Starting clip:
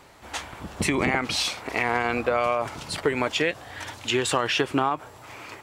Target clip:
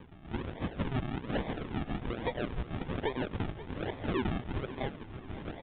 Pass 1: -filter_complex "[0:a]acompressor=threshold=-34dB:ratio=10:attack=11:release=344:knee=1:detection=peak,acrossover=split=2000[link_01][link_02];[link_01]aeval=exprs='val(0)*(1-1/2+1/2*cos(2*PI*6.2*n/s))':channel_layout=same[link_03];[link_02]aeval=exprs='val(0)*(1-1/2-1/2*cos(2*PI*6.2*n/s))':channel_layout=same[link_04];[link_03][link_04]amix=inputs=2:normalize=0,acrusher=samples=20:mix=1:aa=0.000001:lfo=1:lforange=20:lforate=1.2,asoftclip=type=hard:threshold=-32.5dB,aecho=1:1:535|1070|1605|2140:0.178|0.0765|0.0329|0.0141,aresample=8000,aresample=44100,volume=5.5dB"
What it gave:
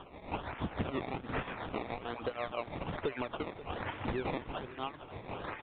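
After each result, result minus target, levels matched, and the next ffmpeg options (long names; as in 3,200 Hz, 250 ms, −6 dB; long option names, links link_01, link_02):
sample-and-hold swept by an LFO: distortion −13 dB; downward compressor: peak gain reduction +5.5 dB
-filter_complex "[0:a]acompressor=threshold=-34dB:ratio=10:attack=11:release=344:knee=1:detection=peak,acrossover=split=2000[link_01][link_02];[link_01]aeval=exprs='val(0)*(1-1/2+1/2*cos(2*PI*6.2*n/s))':channel_layout=same[link_03];[link_02]aeval=exprs='val(0)*(1-1/2-1/2*cos(2*PI*6.2*n/s))':channel_layout=same[link_04];[link_03][link_04]amix=inputs=2:normalize=0,acrusher=samples=61:mix=1:aa=0.000001:lfo=1:lforange=61:lforate=1.2,asoftclip=type=hard:threshold=-32.5dB,aecho=1:1:535|1070|1605|2140:0.178|0.0765|0.0329|0.0141,aresample=8000,aresample=44100,volume=5.5dB"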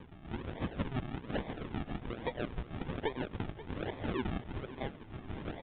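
downward compressor: peak gain reduction +5.5 dB
-filter_complex "[0:a]acompressor=threshold=-28dB:ratio=10:attack=11:release=344:knee=1:detection=peak,acrossover=split=2000[link_01][link_02];[link_01]aeval=exprs='val(0)*(1-1/2+1/2*cos(2*PI*6.2*n/s))':channel_layout=same[link_03];[link_02]aeval=exprs='val(0)*(1-1/2-1/2*cos(2*PI*6.2*n/s))':channel_layout=same[link_04];[link_03][link_04]amix=inputs=2:normalize=0,acrusher=samples=61:mix=1:aa=0.000001:lfo=1:lforange=61:lforate=1.2,asoftclip=type=hard:threshold=-32.5dB,aecho=1:1:535|1070|1605|2140:0.178|0.0765|0.0329|0.0141,aresample=8000,aresample=44100,volume=5.5dB"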